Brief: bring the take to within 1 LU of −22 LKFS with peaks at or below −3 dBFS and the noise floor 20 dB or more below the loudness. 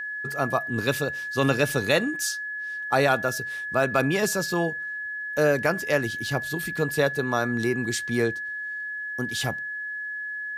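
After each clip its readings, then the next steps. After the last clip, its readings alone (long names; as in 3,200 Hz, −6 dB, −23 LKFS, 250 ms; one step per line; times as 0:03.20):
number of dropouts 1; longest dropout 1.7 ms; interfering tone 1,700 Hz; level of the tone −30 dBFS; integrated loudness −25.5 LKFS; sample peak −8.5 dBFS; target loudness −22.0 LKFS
→ repair the gap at 0:00.32, 1.7 ms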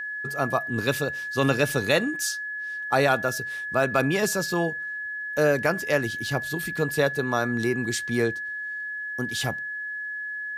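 number of dropouts 0; interfering tone 1,700 Hz; level of the tone −30 dBFS
→ notch filter 1,700 Hz, Q 30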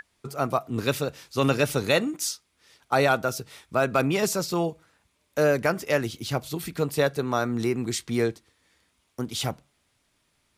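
interfering tone none found; integrated loudness −26.0 LKFS; sample peak −9.0 dBFS; target loudness −22.0 LKFS
→ level +4 dB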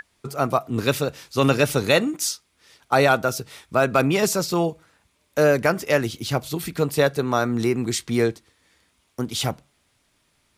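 integrated loudness −22.0 LKFS; sample peak −5.0 dBFS; background noise floor −67 dBFS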